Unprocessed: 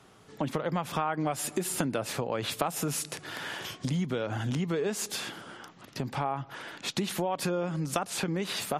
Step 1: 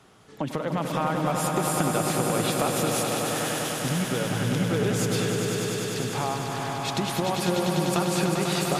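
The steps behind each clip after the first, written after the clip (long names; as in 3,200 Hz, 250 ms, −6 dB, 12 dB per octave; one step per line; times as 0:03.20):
echo that builds up and dies away 99 ms, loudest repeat 5, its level −6.5 dB
level +1.5 dB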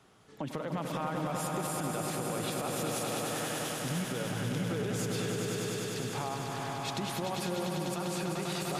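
brickwall limiter −18 dBFS, peak gain reduction 8.5 dB
level −6.5 dB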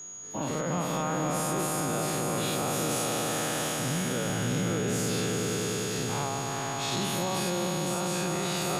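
every bin's largest magnitude spread in time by 120 ms
steady tone 6,700 Hz −40 dBFS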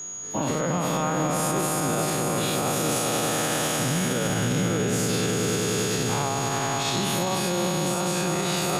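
brickwall limiter −22.5 dBFS, peak gain reduction 4.5 dB
level +7 dB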